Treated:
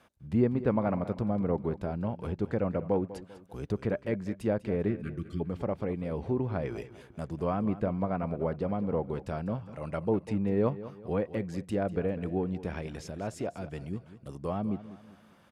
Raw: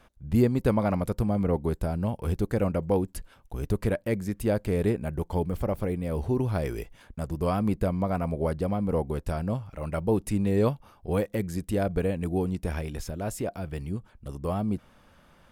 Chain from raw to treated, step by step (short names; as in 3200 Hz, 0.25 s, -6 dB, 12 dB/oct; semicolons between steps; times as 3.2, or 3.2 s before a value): spectral delete 4.88–5.41, 380–1100 Hz; treble ducked by the level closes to 2100 Hz, closed at -22 dBFS; HPF 110 Hz 12 dB/oct; on a send: feedback echo 0.197 s, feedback 40%, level -15 dB; on the sum: gain -3 dB